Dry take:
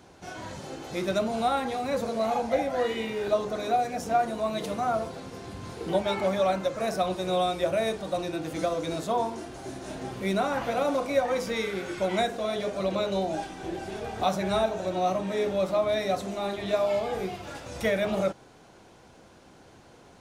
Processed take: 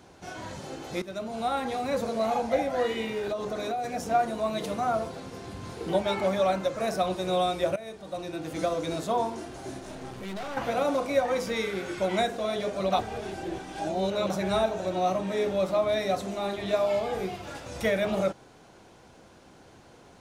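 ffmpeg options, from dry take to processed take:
ffmpeg -i in.wav -filter_complex "[0:a]asettb=1/sr,asplit=3[link_01][link_02][link_03];[link_01]atrim=end=3.184[link_04];[link_02]atrim=start=3.18:end=3.84,asetpts=PTS-STARTPTS,afade=type=in:duration=0.004:curve=qsin,afade=type=out:start_time=0.656:duration=0.004:curve=qsin,acompressor=threshold=-27dB:ratio=6:attack=3.2:release=140:knee=1:detection=peak[link_05];[link_03]atrim=start=3.836[link_06];[link_04][link_05]acrossfade=duration=0.004:curve1=hsin:curve2=qsin[link_07];[link_07][link_06]acrossfade=duration=0.004:curve1=qsin:curve2=hsin,asettb=1/sr,asplit=3[link_08][link_09][link_10];[link_08]atrim=end=9.804[link_11];[link_09]atrim=start=9.8:end=10.57,asetpts=PTS-STARTPTS,afade=type=in:duration=0.004:curve=qsin,afade=type=out:start_time=0.766:duration=0.004:curve=qsin,aeval=exprs='(tanh(50.1*val(0)+0.55)-tanh(0.55))/50.1':channel_layout=same[link_12];[link_10]atrim=start=10.566[link_13];[link_11][link_12]acrossfade=duration=0.004:curve1=hsin:curve2=qsin[link_14];[link_14][link_13]acrossfade=duration=0.004:curve1=qsin:curve2=hsin,asplit=5[link_15][link_16][link_17][link_18][link_19];[link_15]atrim=end=1.02,asetpts=PTS-STARTPTS,afade=type=out:start_time=1.016:duration=0.004:curve=hsin:silence=0.188365[link_20];[link_16]atrim=start=1.02:end=7.76,asetpts=PTS-STARTPTS,afade=type=in:duration=0.72:silence=0.188365,afade=type=out:start_time=6.736:duration=0.004:curve=hsin:silence=0.133352[link_21];[link_17]atrim=start=7.76:end=12.922,asetpts=PTS-STARTPTS,afade=type=in:duration=0.9:silence=0.133352[link_22];[link_18]atrim=start=12.918:end=14.302,asetpts=PTS-STARTPTS,areverse[link_23];[link_19]atrim=start=14.298[link_24];[link_20][link_21][link_22]concat=n=3:v=0:a=1[link_25];[link_25][link_23]acrossfade=duration=0.004:curve1=hsin:curve2=hsin[link_26];[link_26][link_24]acrossfade=duration=0.004:curve1=hsin:curve2=hsin" out.wav

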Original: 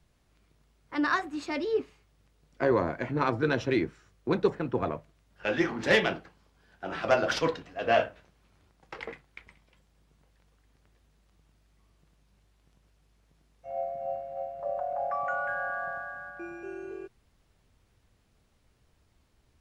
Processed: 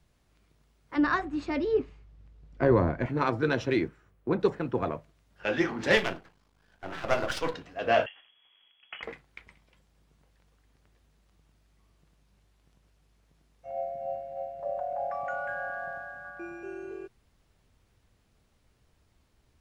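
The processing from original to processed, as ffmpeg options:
ffmpeg -i in.wav -filter_complex "[0:a]asettb=1/sr,asplit=3[link_01][link_02][link_03];[link_01]atrim=end=0.964[link_04];[link_02]atrim=start=0.96:end=3.06,asetpts=PTS-STARTPTS,afade=type=in:duration=0.004:curve=qsin,afade=type=out:start_time=2.096:duration=0.004:curve=qsin,aemphasis=mode=reproduction:type=bsi[link_05];[link_03]atrim=start=3.056[link_06];[link_04][link_05]acrossfade=duration=0.004:curve1=hsin:curve2=qsin[link_07];[link_07][link_06]acrossfade=duration=0.004:curve1=qsin:curve2=hsin,asplit=3[link_08][link_09][link_10];[link_08]afade=type=out:start_time=3.87:duration=0.02[link_11];[link_09]equalizer=frequency=5700:width_type=o:width=2:gain=-14,afade=type=in:start_time=3.87:duration=0.02,afade=type=out:start_time=4.39:duration=0.02[link_12];[link_10]afade=type=in:start_time=4.39:duration=0.02[link_13];[link_11][link_12][link_13]amix=inputs=3:normalize=0,asettb=1/sr,asplit=3[link_14][link_15][link_16];[link_14]atrim=end=5.974[link_17];[link_15]atrim=start=5.97:end=7.54,asetpts=PTS-STARTPTS,afade=type=in:duration=0.004:curve=qsin,afade=type=out:start_time=1.566:duration=0.004:curve=qsin,aeval=exprs='if(lt(val(0),0),0.251*val(0),val(0))':channel_layout=same[link_18];[link_16]atrim=start=7.536[link_19];[link_17][link_18]acrossfade=duration=0.004:curve1=hsin:curve2=qsin[link_20];[link_20][link_19]acrossfade=duration=0.004:curve1=qsin:curve2=hsin,asettb=1/sr,asplit=3[link_21][link_22][link_23];[link_21]atrim=end=8.064[link_24];[link_22]atrim=start=8.06:end=9.03,asetpts=PTS-STARTPTS,afade=type=in:duration=0.004:curve=qsin,afade=type=out:start_time=0.966:duration=0.004:curve=qsin,lowpass=frequency=2900:width_type=q:width=0.5098,lowpass=frequency=2900:width_type=q:width=0.6013,lowpass=frequency=2900:width_type=q:width=0.9,lowpass=frequency=2900:width_type=q:width=2.563,afreqshift=-3400[link_25];[link_23]atrim=start=9.026[link_26];[link_24][link_25]acrossfade=duration=0.004:curve1=hsin:curve2=qsin[link_27];[link_27][link_26]acrossfade=duration=0.004:curve1=qsin:curve2=hsin,asettb=1/sr,asplit=3[link_28][link_29][link_30];[link_28]atrim=end=13.714[link_31];[link_29]atrim=start=13.71:end=16.25,asetpts=PTS-STARTPTS,afade=type=in:duration=0.004:curve=qsin,afade=type=out:start_time=2.536:duration=0.004:curve=qsin,equalizer=frequency=1200:width_type=o:width=0.5:gain=-8[link_32];[link_30]atrim=start=16.246[link_33];[link_31][link_32]acrossfade=duration=0.004:curve1=hsin:curve2=qsin[link_34];[link_34][link_33]acrossfade=duration=0.004:curve1=qsin:curve2=hsin" out.wav

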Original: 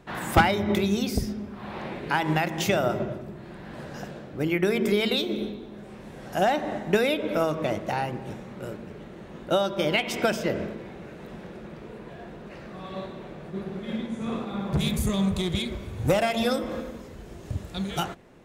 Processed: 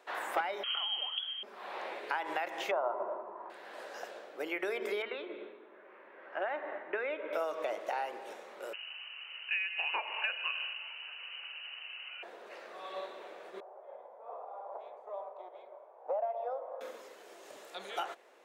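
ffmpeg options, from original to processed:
ffmpeg -i in.wav -filter_complex "[0:a]asettb=1/sr,asplit=3[link_01][link_02][link_03];[link_01]atrim=end=0.634[link_04];[link_02]atrim=start=0.63:end=1.43,asetpts=PTS-STARTPTS,afade=type=in:duration=0.004:curve=qsin,afade=type=out:start_time=0.796:duration=0.004:curve=qsin,lowpass=frequency=2900:width_type=q:width=0.5098,lowpass=frequency=2900:width_type=q:width=0.6013,lowpass=frequency=2900:width_type=q:width=0.9,lowpass=frequency=2900:width_type=q:width=2.563,afreqshift=-3400[link_05];[link_03]atrim=start=1.426[link_06];[link_04][link_05]acrossfade=duration=0.004:curve1=hsin:curve2=qsin[link_07];[link_07][link_06]acrossfade=duration=0.004:curve1=qsin:curve2=hsin,asettb=1/sr,asplit=3[link_08][link_09][link_10];[link_08]atrim=end=2.714[link_11];[link_09]atrim=start=2.71:end=3.5,asetpts=PTS-STARTPTS,afade=type=in:duration=0.004:curve=qsin,afade=type=out:start_time=0.786:duration=0.004:curve=qsin,lowpass=frequency=1000:width_type=q:width=6.3[link_12];[link_10]atrim=start=3.496[link_13];[link_11][link_12]acrossfade=duration=0.004:curve1=hsin:curve2=qsin[link_14];[link_14][link_13]acrossfade=duration=0.004:curve1=qsin:curve2=hsin,asettb=1/sr,asplit=3[link_15][link_16][link_17];[link_15]atrim=end=5.024[link_18];[link_16]atrim=start=5.02:end=7.33,asetpts=PTS-STARTPTS,afade=type=in:duration=0.004:curve=qsin,afade=type=out:start_time=2.306:duration=0.004:curve=qsin,highpass=110,equalizer=frequency=190:width_type=q:width=4:gain=-8,equalizer=frequency=470:width_type=q:width=4:gain=-6,equalizer=frequency=740:width_type=q:width=4:gain=-10,lowpass=frequency=2200:width=0.5412,lowpass=frequency=2200:width=1.3066[link_19];[link_17]atrim=start=7.326[link_20];[link_18][link_19]acrossfade=duration=0.004:curve1=hsin:curve2=qsin[link_21];[link_21][link_20]acrossfade=duration=0.004:curve1=qsin:curve2=hsin,asettb=1/sr,asplit=3[link_22][link_23][link_24];[link_22]atrim=end=8.734[link_25];[link_23]atrim=start=8.73:end=12.23,asetpts=PTS-STARTPTS,afade=type=in:duration=0.004:curve=qsin,afade=type=out:start_time=3.496:duration=0.004:curve=qsin,lowpass=frequency=2600:width_type=q:width=0.5098,lowpass=frequency=2600:width_type=q:width=0.6013,lowpass=frequency=2600:width_type=q:width=0.9,lowpass=frequency=2600:width_type=q:width=2.563,afreqshift=-3100[link_26];[link_24]atrim=start=12.226[link_27];[link_25][link_26]acrossfade=duration=0.004:curve1=hsin:curve2=qsin[link_28];[link_28][link_27]acrossfade=duration=0.004:curve1=qsin:curve2=hsin,asettb=1/sr,asplit=3[link_29][link_30][link_31];[link_29]atrim=end=13.604[link_32];[link_30]atrim=start=13.6:end=16.81,asetpts=PTS-STARTPTS,afade=type=in:duration=0.004:curve=qsin,afade=type=out:start_time=3.206:duration=0.004:curve=qsin,asuperpass=centerf=730:order=4:qfactor=1.8[link_33];[link_31]atrim=start=16.806[link_34];[link_32][link_33]acrossfade=duration=0.004:curve1=hsin:curve2=qsin[link_35];[link_35][link_34]acrossfade=duration=0.004:curve1=qsin:curve2=hsin,acrossover=split=2900[link_36][link_37];[link_37]acompressor=threshold=-48dB:ratio=4:attack=1:release=60[link_38];[link_36][link_38]amix=inputs=2:normalize=0,highpass=frequency=460:width=0.5412,highpass=frequency=460:width=1.3066,acompressor=threshold=-29dB:ratio=3,volume=-3dB" out.wav

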